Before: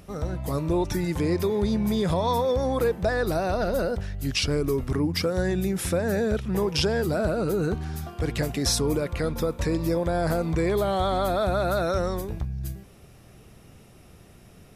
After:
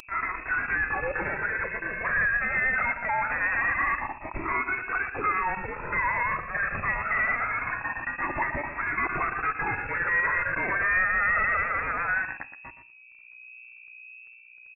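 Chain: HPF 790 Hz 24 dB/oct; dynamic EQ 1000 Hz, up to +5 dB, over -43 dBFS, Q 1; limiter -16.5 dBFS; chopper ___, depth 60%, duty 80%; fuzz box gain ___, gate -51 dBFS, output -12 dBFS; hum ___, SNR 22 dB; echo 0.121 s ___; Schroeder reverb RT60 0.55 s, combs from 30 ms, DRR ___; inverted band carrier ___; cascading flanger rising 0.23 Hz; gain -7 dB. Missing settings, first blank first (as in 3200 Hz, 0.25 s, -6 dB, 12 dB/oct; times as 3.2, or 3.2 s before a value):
8.8 Hz, 44 dB, 60 Hz, -11 dB, 18 dB, 2600 Hz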